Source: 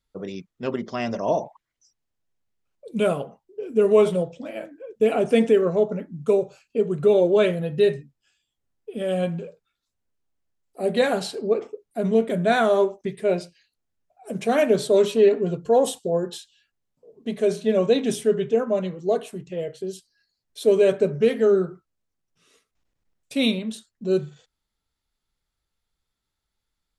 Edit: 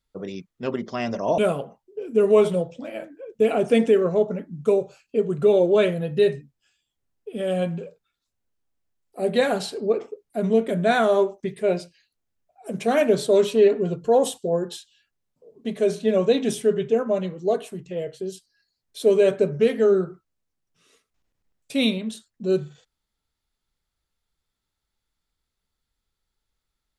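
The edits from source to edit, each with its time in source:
1.38–2.99 s: delete

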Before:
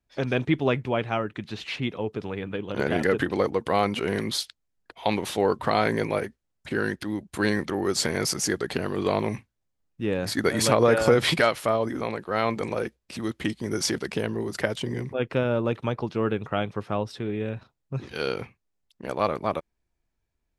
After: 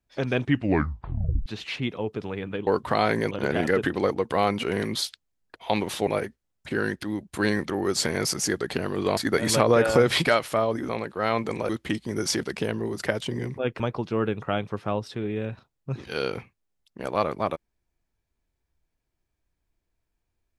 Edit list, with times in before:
0.41 s: tape stop 1.05 s
5.43–6.07 s: move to 2.67 s
9.17–10.29 s: delete
12.81–13.24 s: delete
15.35–15.84 s: delete

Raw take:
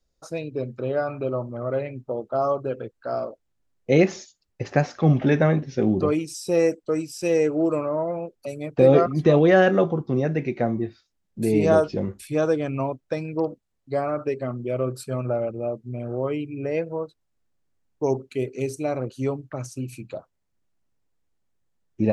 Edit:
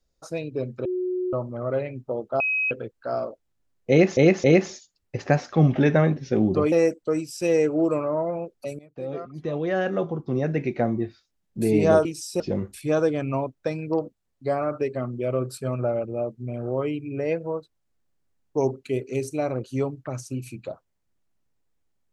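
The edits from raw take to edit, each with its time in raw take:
0.85–1.33 s: bleep 365 Hz -23.5 dBFS
2.40–2.71 s: bleep 2.54 kHz -21 dBFS
3.90–4.17 s: loop, 3 plays
6.18–6.53 s: move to 11.86 s
8.60–10.42 s: fade in quadratic, from -19 dB

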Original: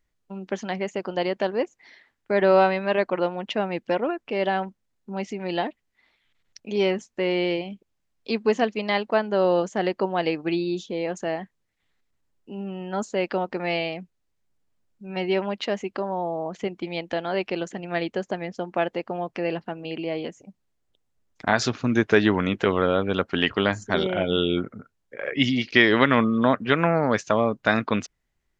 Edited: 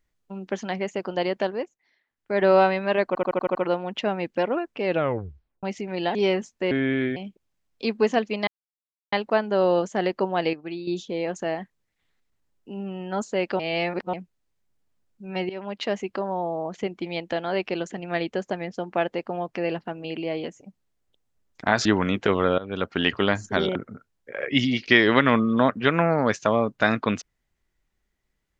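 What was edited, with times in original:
1.42–2.45 s: dip -17.5 dB, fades 0.37 s
3.07 s: stutter 0.08 s, 7 plays
4.37 s: tape stop 0.78 s
5.67–6.72 s: delete
7.28–7.62 s: speed 75%
8.93 s: insert silence 0.65 s
10.34–10.68 s: gain -8.5 dB
13.40–13.94 s: reverse
15.30–15.67 s: fade in, from -18.5 dB
21.66–22.23 s: delete
22.96–23.46 s: fade in equal-power, from -18.5 dB
24.13–24.60 s: delete

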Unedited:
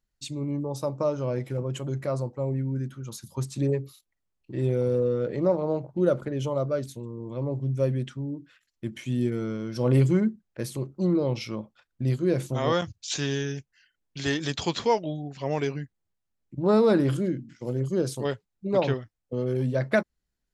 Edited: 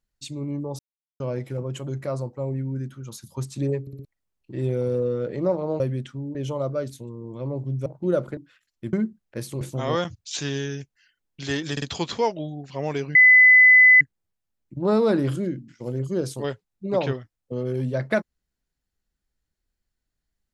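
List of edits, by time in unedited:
0.79–1.20 s: mute
3.81 s: stutter in place 0.06 s, 4 plays
5.80–6.31 s: swap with 7.82–8.37 s
8.93–10.16 s: delete
10.84–12.38 s: delete
14.49 s: stutter 0.05 s, 3 plays
15.82 s: add tone 2.01 kHz -9 dBFS 0.86 s

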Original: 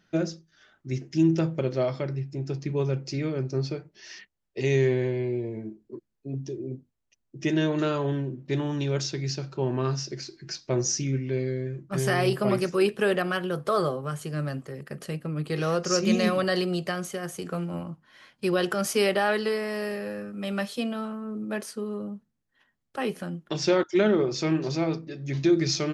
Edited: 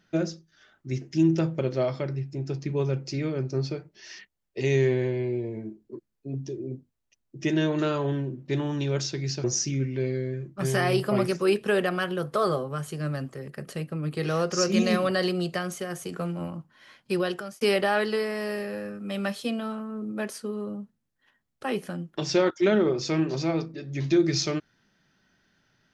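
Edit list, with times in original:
9.44–10.77 s: delete
18.45–18.94 s: fade out

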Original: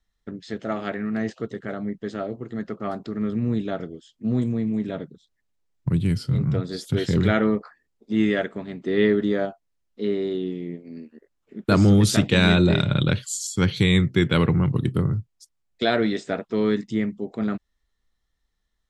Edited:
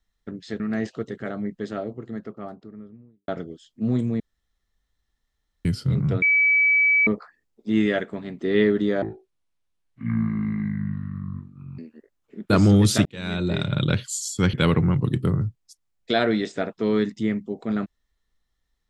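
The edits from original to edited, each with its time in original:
0.60–1.03 s: delete
1.97–3.71 s: studio fade out
4.63–6.08 s: room tone
6.65–7.50 s: bleep 2.29 kHz -15 dBFS
9.45–10.97 s: speed 55%
12.24–13.16 s: fade in
13.72–14.25 s: delete

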